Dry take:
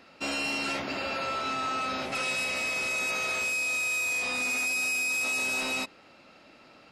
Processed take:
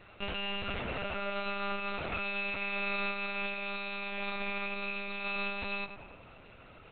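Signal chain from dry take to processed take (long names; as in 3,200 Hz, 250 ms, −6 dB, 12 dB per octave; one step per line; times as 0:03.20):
downward compressor, threshold −33 dBFS, peak gain reduction 5.5 dB
feedback echo with a low-pass in the loop 98 ms, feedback 77%, low-pass 2,600 Hz, level −10 dB
one-pitch LPC vocoder at 8 kHz 200 Hz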